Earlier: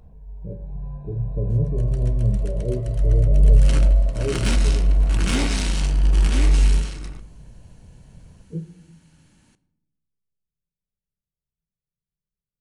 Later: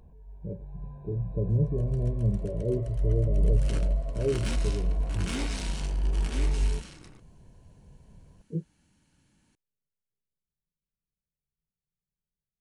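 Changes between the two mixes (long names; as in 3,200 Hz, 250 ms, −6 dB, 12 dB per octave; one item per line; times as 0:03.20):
second sound −9.0 dB
reverb: off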